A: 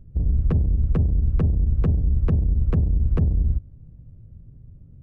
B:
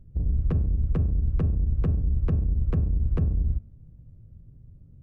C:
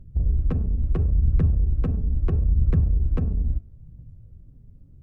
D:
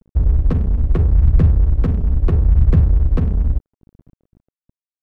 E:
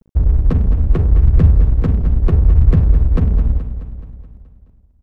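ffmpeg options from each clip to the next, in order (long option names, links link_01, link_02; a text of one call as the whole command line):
ffmpeg -i in.wav -af "bandreject=frequency=220.3:width_type=h:width=4,bandreject=frequency=440.6:width_type=h:width=4,bandreject=frequency=660.9:width_type=h:width=4,bandreject=frequency=881.2:width_type=h:width=4,bandreject=frequency=1101.5:width_type=h:width=4,bandreject=frequency=1321.8:width_type=h:width=4,bandreject=frequency=1542.1:width_type=h:width=4,bandreject=frequency=1762.4:width_type=h:width=4,bandreject=frequency=1982.7:width_type=h:width=4,bandreject=frequency=2203:width_type=h:width=4,bandreject=frequency=2423.3:width_type=h:width=4,bandreject=frequency=2643.6:width_type=h:width=4,bandreject=frequency=2863.9:width_type=h:width=4,volume=-4dB" out.wav
ffmpeg -i in.wav -af "aphaser=in_gain=1:out_gain=1:delay=4.9:decay=0.39:speed=0.75:type=triangular,volume=1dB" out.wav
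ffmpeg -i in.wav -af "aeval=exprs='sgn(val(0))*max(abs(val(0))-0.0119,0)':channel_layout=same,volume=8dB" out.wav
ffmpeg -i in.wav -af "aecho=1:1:213|426|639|852|1065|1278|1491:0.299|0.17|0.097|0.0553|0.0315|0.018|0.0102,volume=1.5dB" out.wav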